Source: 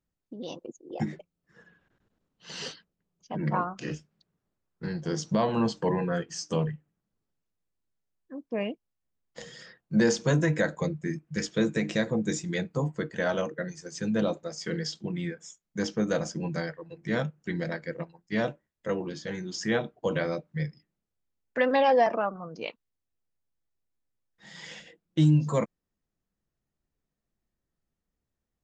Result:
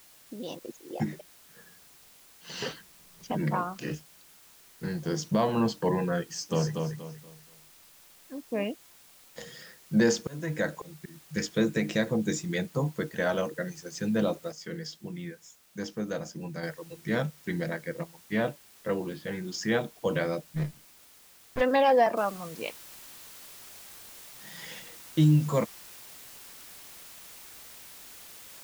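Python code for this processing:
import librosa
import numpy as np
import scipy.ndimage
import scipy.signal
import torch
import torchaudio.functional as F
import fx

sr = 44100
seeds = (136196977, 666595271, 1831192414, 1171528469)

y = fx.band_squash(x, sr, depth_pct=70, at=(2.62, 3.78))
y = fx.echo_feedback(y, sr, ms=238, feedback_pct=30, wet_db=-4.5, at=(6.49, 8.69), fade=0.02)
y = fx.auto_swell(y, sr, attack_ms=489.0, at=(10.2, 11.33), fade=0.02)
y = fx.lowpass(y, sr, hz=3800.0, slope=24, at=(17.7, 19.48))
y = fx.running_max(y, sr, window=33, at=(20.53, 21.6), fade=0.02)
y = fx.noise_floor_step(y, sr, seeds[0], at_s=22.17, before_db=-56, after_db=-48, tilt_db=0.0)
y = fx.edit(y, sr, fx.clip_gain(start_s=14.52, length_s=2.11, db=-6.0), tone=tone)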